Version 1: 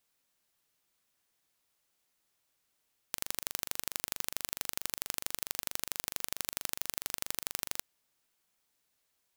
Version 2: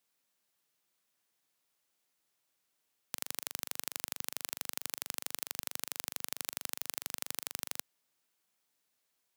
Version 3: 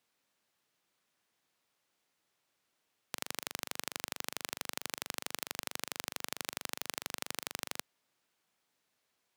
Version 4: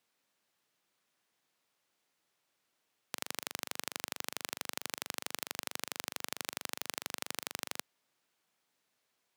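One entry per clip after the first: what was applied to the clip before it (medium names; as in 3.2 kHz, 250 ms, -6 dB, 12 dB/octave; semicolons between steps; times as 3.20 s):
high-pass 120 Hz 12 dB/octave; trim -2 dB
low-pass 3.8 kHz 6 dB/octave; trim +5 dB
bass shelf 62 Hz -8.5 dB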